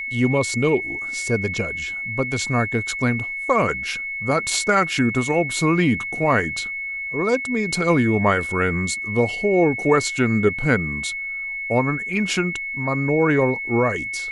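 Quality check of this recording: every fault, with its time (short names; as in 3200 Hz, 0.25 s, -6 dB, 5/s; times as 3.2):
tone 2200 Hz -26 dBFS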